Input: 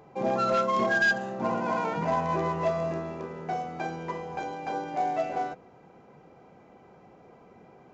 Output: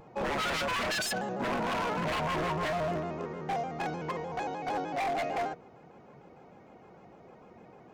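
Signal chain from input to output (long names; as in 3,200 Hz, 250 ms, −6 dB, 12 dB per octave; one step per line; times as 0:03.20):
wave folding −26 dBFS
pitch modulation by a square or saw wave square 6.6 Hz, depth 100 cents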